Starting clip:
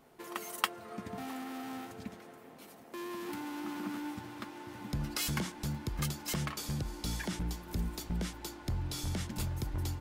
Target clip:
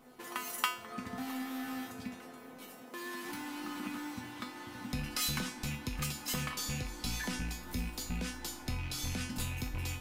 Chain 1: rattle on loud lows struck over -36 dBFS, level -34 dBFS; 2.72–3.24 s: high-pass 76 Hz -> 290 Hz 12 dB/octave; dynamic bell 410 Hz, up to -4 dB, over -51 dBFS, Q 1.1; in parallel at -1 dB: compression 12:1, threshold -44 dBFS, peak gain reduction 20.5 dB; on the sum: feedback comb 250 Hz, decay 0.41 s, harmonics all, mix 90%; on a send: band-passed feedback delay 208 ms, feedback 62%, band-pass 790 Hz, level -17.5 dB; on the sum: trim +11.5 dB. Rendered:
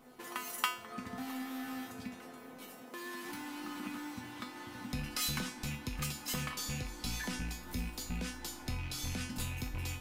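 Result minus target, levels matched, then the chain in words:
compression: peak gain reduction +5.5 dB
rattle on loud lows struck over -36 dBFS, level -34 dBFS; 2.72–3.24 s: high-pass 76 Hz -> 290 Hz 12 dB/octave; dynamic bell 410 Hz, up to -4 dB, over -51 dBFS, Q 1.1; in parallel at -1 dB: compression 12:1, threshold -38 dBFS, peak gain reduction 15 dB; on the sum: feedback comb 250 Hz, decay 0.41 s, harmonics all, mix 90%; on a send: band-passed feedback delay 208 ms, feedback 62%, band-pass 790 Hz, level -17.5 dB; on the sum: trim +11.5 dB

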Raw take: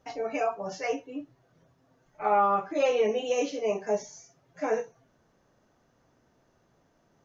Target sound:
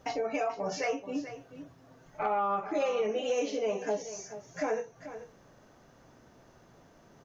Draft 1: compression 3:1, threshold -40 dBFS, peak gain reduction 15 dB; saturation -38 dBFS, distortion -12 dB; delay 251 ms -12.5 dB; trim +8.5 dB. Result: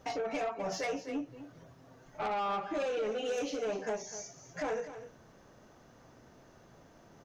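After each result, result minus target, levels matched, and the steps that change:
saturation: distortion +16 dB; echo 184 ms early
change: saturation -26.5 dBFS, distortion -28 dB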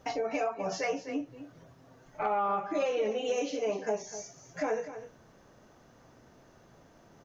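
echo 184 ms early
change: delay 435 ms -12.5 dB

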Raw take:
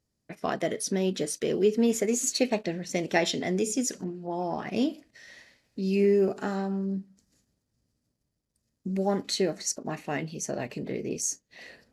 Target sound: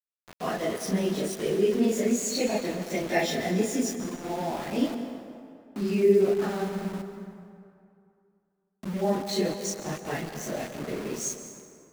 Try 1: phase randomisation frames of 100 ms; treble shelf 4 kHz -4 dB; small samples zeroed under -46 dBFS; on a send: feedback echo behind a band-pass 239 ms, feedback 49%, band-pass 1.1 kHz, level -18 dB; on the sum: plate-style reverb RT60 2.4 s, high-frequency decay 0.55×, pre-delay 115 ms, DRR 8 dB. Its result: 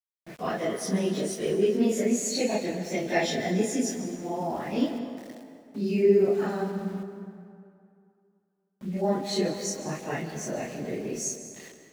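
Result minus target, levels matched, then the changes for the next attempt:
small samples zeroed: distortion -13 dB
change: small samples zeroed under -36 dBFS

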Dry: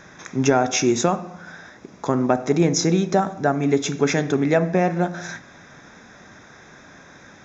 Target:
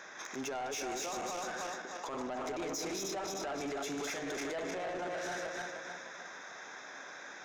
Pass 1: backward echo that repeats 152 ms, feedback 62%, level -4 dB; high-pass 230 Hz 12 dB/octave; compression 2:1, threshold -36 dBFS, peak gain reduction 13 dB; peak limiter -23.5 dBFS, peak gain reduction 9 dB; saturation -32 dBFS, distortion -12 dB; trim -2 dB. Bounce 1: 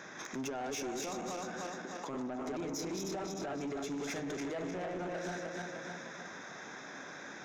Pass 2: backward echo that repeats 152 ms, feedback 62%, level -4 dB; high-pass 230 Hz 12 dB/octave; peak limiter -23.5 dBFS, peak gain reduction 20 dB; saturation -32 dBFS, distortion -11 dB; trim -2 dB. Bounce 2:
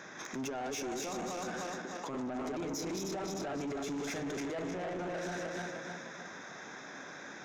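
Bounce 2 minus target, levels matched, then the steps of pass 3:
250 Hz band +4.0 dB
backward echo that repeats 152 ms, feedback 62%, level -4 dB; high-pass 510 Hz 12 dB/octave; peak limiter -23.5 dBFS, peak gain reduction 16.5 dB; saturation -32 dBFS, distortion -11 dB; trim -2 dB

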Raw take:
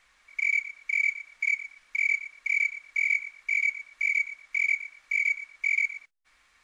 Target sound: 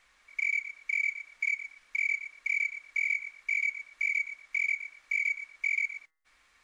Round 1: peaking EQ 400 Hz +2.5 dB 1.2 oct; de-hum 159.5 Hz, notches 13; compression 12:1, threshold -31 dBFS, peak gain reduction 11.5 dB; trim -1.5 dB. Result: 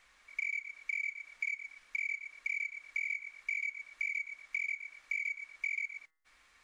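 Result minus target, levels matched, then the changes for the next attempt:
compression: peak gain reduction +7.5 dB
change: compression 12:1, threshold -23 dBFS, peak gain reduction 4 dB

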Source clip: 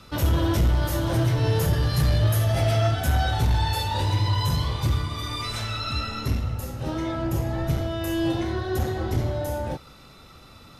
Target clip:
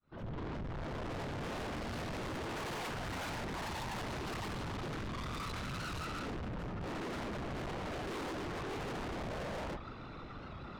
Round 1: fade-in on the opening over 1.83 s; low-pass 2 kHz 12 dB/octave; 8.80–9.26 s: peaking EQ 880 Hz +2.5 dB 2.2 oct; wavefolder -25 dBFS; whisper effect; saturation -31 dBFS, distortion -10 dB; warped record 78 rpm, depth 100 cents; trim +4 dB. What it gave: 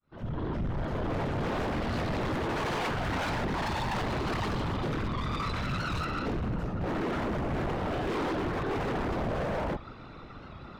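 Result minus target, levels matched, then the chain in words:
saturation: distortion -6 dB
fade-in on the opening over 1.83 s; low-pass 2 kHz 12 dB/octave; 8.80–9.26 s: peaking EQ 880 Hz +2.5 dB 2.2 oct; wavefolder -25 dBFS; whisper effect; saturation -43 dBFS, distortion -4 dB; warped record 78 rpm, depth 100 cents; trim +4 dB

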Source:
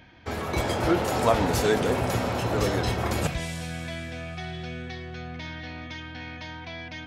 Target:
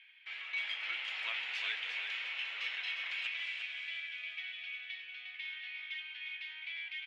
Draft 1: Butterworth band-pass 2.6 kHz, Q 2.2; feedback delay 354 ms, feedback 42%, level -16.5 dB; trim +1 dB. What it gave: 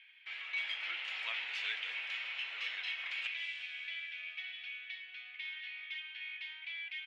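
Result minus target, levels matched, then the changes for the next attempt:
echo-to-direct -10 dB
change: feedback delay 354 ms, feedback 42%, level -6.5 dB

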